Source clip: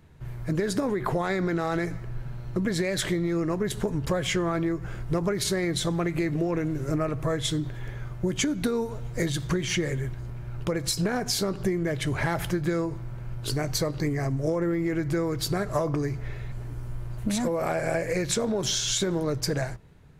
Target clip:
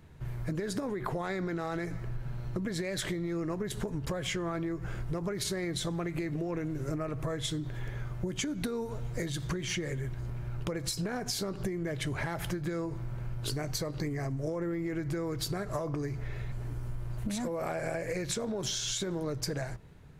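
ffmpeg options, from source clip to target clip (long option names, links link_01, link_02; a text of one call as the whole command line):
ffmpeg -i in.wav -af "acompressor=threshold=-31dB:ratio=6" out.wav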